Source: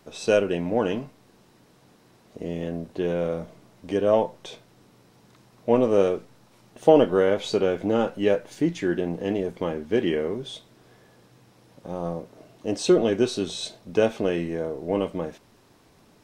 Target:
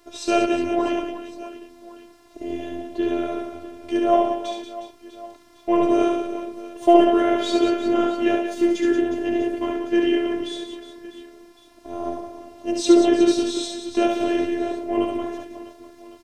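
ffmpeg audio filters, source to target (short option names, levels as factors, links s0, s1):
-af "aecho=1:1:70|182|361.2|647.9|1107:0.631|0.398|0.251|0.158|0.1,afftfilt=real='hypot(re,im)*cos(PI*b)':imag='0':win_size=512:overlap=0.75,volume=1.78"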